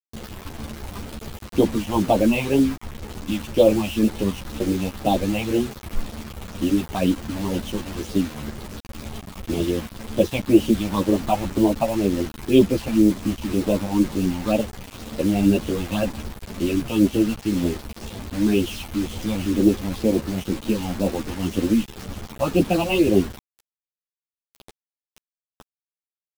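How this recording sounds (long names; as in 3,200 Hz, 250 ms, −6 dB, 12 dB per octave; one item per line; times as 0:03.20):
phaser sweep stages 6, 2 Hz, lowest notch 360–1,800 Hz
a quantiser's noise floor 6 bits, dither none
a shimmering, thickened sound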